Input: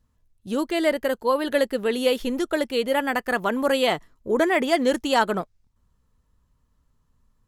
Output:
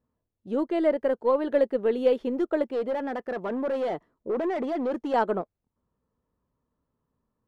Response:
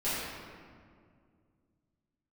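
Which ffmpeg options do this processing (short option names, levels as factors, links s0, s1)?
-filter_complex "[0:a]asettb=1/sr,asplit=3[s0][s1][s2];[s0]atrim=end=2.624[s3];[s1]atrim=start=2.62:end=5.14,asetpts=PTS-STARTPTS,afade=t=in:d=0.004:c=qsin,afade=t=out:st=2.516:d=0.004:c=qsin,asoftclip=type=hard:threshold=0.0668[s4];[s2]atrim=start=5.136[s5];[s3][s4]acrossfade=d=0.004:c1=hsin:c2=qsin[s6];[s6][s5]acrossfade=d=0.004:c1=qsin:c2=hsin,bandpass=f=450:t=q:w=0.84:csg=0,aeval=exprs='0.299*(cos(1*acos(clip(val(0)/0.299,-1,1)))-cos(1*PI/2))+0.00668*(cos(5*acos(clip(val(0)/0.299,-1,1)))-cos(5*PI/2))+0.00531*(cos(7*acos(clip(val(0)/0.299,-1,1)))-cos(7*PI/2))+0.00299*(cos(8*acos(clip(val(0)/0.299,-1,1)))-cos(8*PI/2))':c=same"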